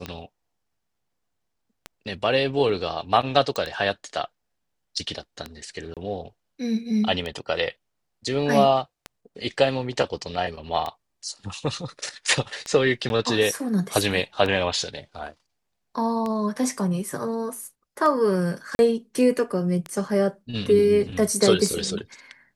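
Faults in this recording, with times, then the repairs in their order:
tick 33 1/3 rpm -16 dBFS
3.56 pop -13 dBFS
5.94–5.97 gap 27 ms
13.09–13.1 gap 11 ms
18.75–18.79 gap 41 ms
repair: de-click; interpolate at 5.94, 27 ms; interpolate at 13.09, 11 ms; interpolate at 18.75, 41 ms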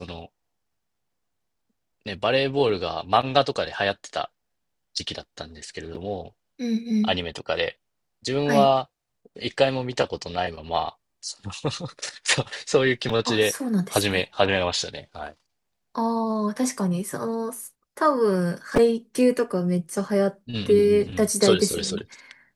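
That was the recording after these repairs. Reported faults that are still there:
none

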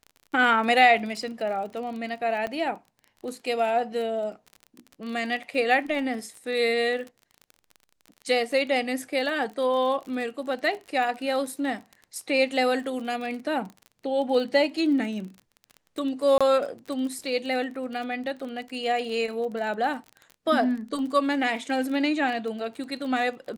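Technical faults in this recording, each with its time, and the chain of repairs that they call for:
crackle 31/s -34 dBFS
2.47 pop -19 dBFS
16.38–16.41 gap 26 ms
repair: de-click; interpolate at 16.38, 26 ms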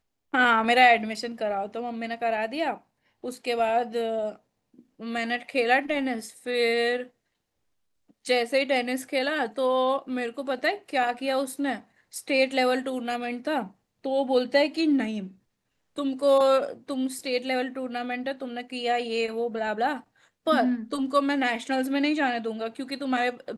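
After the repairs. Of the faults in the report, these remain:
2.47 pop

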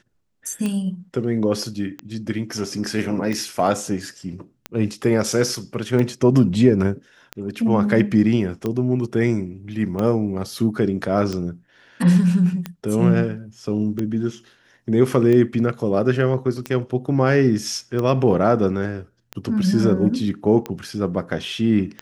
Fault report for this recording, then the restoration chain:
tick 45 rpm -13 dBFS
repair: de-click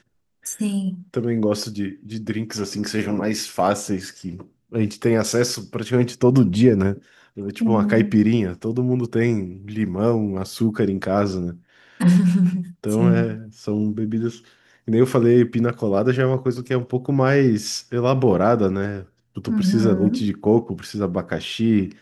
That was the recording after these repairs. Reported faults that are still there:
none

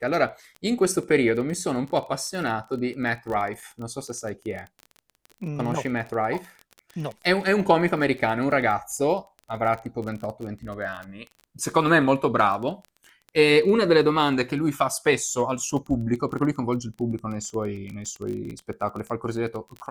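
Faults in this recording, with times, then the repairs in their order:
crackle 21/s -31 dBFS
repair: de-click

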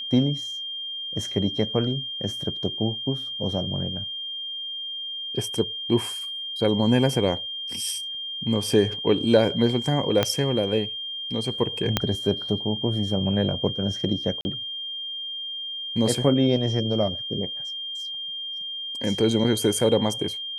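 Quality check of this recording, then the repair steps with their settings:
tone 3200 Hz -30 dBFS
10.23 pop -6 dBFS
11.97 pop -5 dBFS
14.41–14.45 gap 40 ms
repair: de-click; notch 3200 Hz, Q 30; interpolate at 14.41, 40 ms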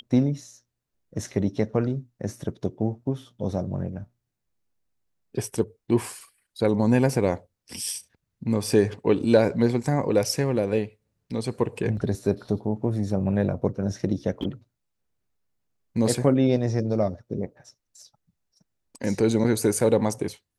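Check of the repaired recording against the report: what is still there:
10.23 pop
11.97 pop

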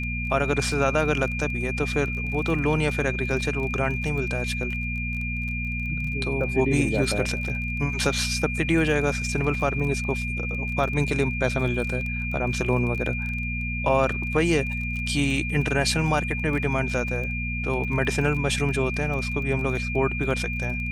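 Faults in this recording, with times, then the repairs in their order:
crackle 23/s -31 dBFS
hum 60 Hz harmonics 4 -30 dBFS
tone 2400 Hz -30 dBFS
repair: de-click; de-hum 60 Hz, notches 4; notch 2400 Hz, Q 30

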